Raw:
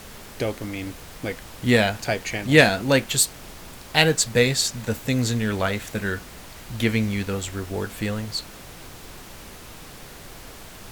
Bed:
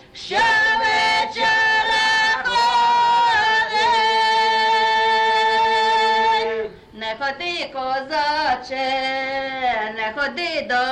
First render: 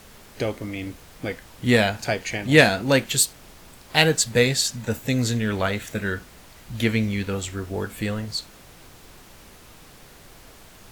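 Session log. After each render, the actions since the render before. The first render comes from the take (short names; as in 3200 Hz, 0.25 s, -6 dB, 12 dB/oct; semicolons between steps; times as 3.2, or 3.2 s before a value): noise print and reduce 6 dB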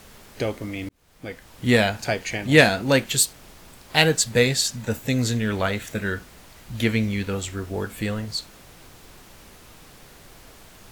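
0.89–1.64 fade in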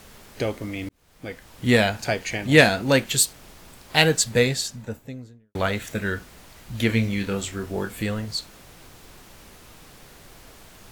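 4.2–5.55 studio fade out; 6.87–8.03 doubler 26 ms -7 dB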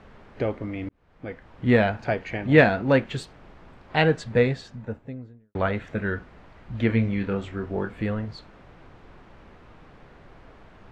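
LPF 1800 Hz 12 dB/oct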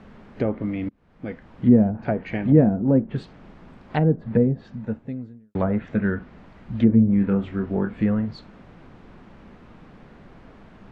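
treble ducked by the level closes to 450 Hz, closed at -18 dBFS; bell 210 Hz +9 dB 0.97 oct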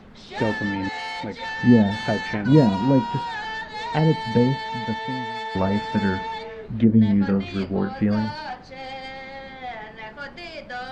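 add bed -13.5 dB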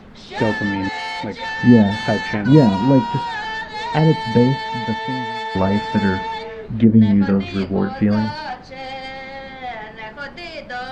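gain +4.5 dB; limiter -1 dBFS, peak gain reduction 1 dB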